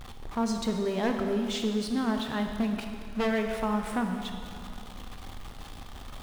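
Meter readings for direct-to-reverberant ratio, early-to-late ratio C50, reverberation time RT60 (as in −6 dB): 4.0 dB, 5.0 dB, 2.4 s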